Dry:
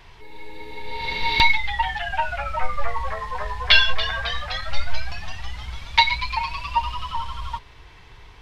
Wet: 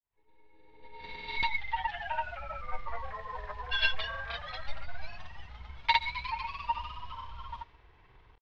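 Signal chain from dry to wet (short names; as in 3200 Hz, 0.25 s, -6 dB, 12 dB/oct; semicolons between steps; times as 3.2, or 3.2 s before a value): opening faded in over 1.87 s; low shelf 230 Hz -4.5 dB; grains, pitch spread up and down by 0 st; air absorption 150 m; speakerphone echo 0.13 s, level -29 dB; mismatched tape noise reduction decoder only; gain -8 dB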